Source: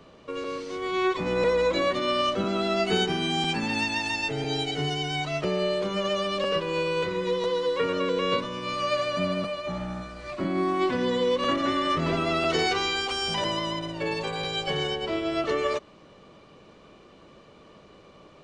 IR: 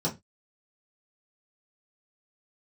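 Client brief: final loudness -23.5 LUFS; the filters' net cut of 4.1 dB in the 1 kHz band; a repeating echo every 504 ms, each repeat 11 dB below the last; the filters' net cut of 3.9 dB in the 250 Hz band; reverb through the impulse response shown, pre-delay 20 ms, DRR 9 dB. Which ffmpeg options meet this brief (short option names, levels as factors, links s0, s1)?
-filter_complex "[0:a]equalizer=f=250:t=o:g=-5.5,equalizer=f=1000:t=o:g=-5,aecho=1:1:504|1008|1512:0.282|0.0789|0.0221,asplit=2[s0][s1];[1:a]atrim=start_sample=2205,adelay=20[s2];[s1][s2]afir=irnorm=-1:irlink=0,volume=0.15[s3];[s0][s3]amix=inputs=2:normalize=0,volume=1.41"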